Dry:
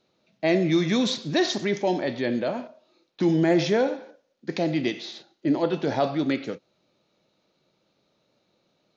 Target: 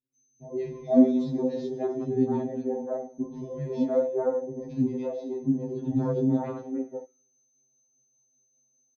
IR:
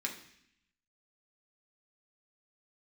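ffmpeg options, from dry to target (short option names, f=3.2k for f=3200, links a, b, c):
-filter_complex "[0:a]bandreject=f=62.8:t=h:w=4,bandreject=f=125.6:t=h:w=4,bandreject=f=188.4:t=h:w=4,bandreject=f=251.2:t=h:w=4,bandreject=f=314:t=h:w=4,bandreject=f=376.8:t=h:w=4,bandreject=f=439.6:t=h:w=4,aeval=exprs='val(0)+0.00501*sin(2*PI*6200*n/s)':c=same,tiltshelf=f=640:g=10,acrossover=split=360|1600[a][b][c];[c]adelay=150[d];[b]adelay=460[e];[a][e][d]amix=inputs=3:normalize=0,asplit=2[f][g];[1:a]atrim=start_sample=2205,afade=t=out:st=0.39:d=0.01,atrim=end_sample=17640[h];[g][h]afir=irnorm=-1:irlink=0,volume=-5dB[i];[f][i]amix=inputs=2:normalize=0,tremolo=f=5:d=0.3,afwtdn=0.0447,adynamicequalizer=threshold=0.0398:dfrequency=200:dqfactor=0.7:tfrequency=200:tqfactor=0.7:attack=5:release=100:ratio=0.375:range=2:mode=cutabove:tftype=bell,afftfilt=real='re*2.45*eq(mod(b,6),0)':imag='im*2.45*eq(mod(b,6),0)':win_size=2048:overlap=0.75"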